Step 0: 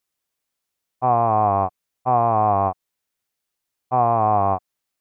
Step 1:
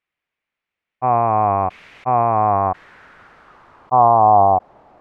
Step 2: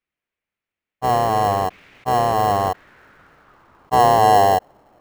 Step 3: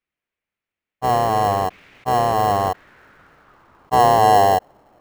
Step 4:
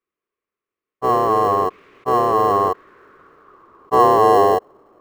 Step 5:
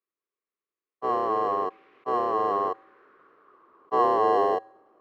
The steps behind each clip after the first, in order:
low-pass sweep 2300 Hz -> 790 Hz, 2.2–4.52; sustainer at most 22 dB/s
dynamic EQ 700 Hz, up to +4 dB, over -25 dBFS, Q 1.5; in parallel at -8.5 dB: sample-rate reducer 1200 Hz, jitter 0%; on the sum: gain -5 dB
nothing audible
small resonant body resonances 400/1100 Hz, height 17 dB, ringing for 20 ms; gain -7 dB
three-band isolator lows -14 dB, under 200 Hz, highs -20 dB, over 4800 Hz; resonator 110 Hz, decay 0.84 s, harmonics odd, mix 40%; gain -4.5 dB

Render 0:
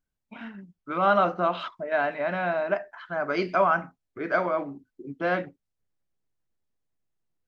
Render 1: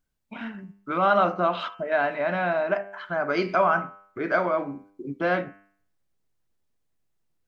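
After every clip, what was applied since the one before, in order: de-hum 99.31 Hz, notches 31; in parallel at -2 dB: compressor, threshold -33 dBFS, peak gain reduction 15 dB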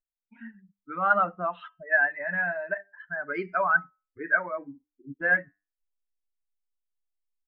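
per-bin expansion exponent 2; synth low-pass 1700 Hz, resonance Q 8; gain -5 dB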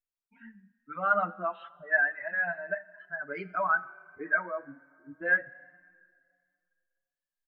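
plate-style reverb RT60 2.2 s, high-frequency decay 0.9×, DRR 19 dB; endless flanger 5.6 ms +1.3 Hz; gain -1 dB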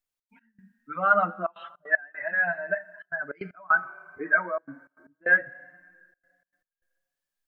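step gate "xx.x..xxxxxxxxx." 154 bpm -24 dB; gain +5 dB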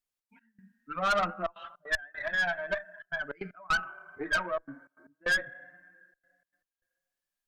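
tube stage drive 22 dB, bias 0.5

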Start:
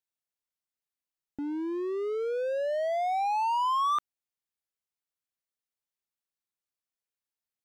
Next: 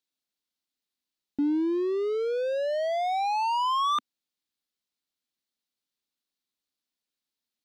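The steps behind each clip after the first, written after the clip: graphic EQ 125/250/4000 Hz -3/+11/+10 dB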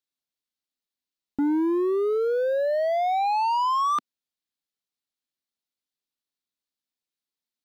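sample leveller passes 2

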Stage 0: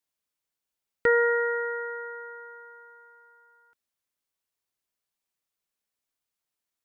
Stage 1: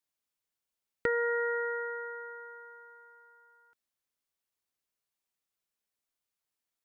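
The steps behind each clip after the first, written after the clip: compressor, threshold -24 dBFS, peak gain reduction 6.5 dB; gain -2.5 dB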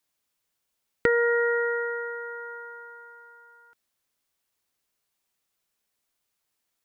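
dynamic EQ 1000 Hz, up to -4 dB, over -44 dBFS, Q 0.84; gain +9 dB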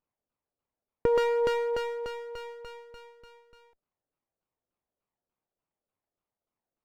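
LFO low-pass saw down 3.4 Hz 520–1600 Hz; running maximum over 17 samples; gain -4.5 dB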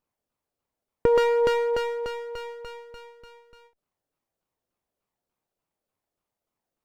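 ending taper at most 240 dB/s; gain +4.5 dB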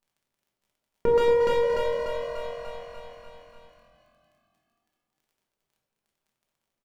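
crackle 19/s -51 dBFS; frequency-shifting echo 0.227 s, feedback 60%, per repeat +44 Hz, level -9 dB; reverb RT60 0.90 s, pre-delay 5 ms, DRR -0.5 dB; gain -5.5 dB

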